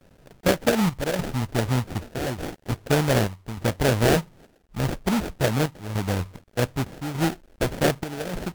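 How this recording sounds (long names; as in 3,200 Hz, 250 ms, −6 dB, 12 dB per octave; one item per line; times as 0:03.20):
a quantiser's noise floor 10 bits, dither none
chopped level 0.84 Hz, depth 65%, duty 75%
aliases and images of a low sample rate 1,100 Hz, jitter 20%
Ogg Vorbis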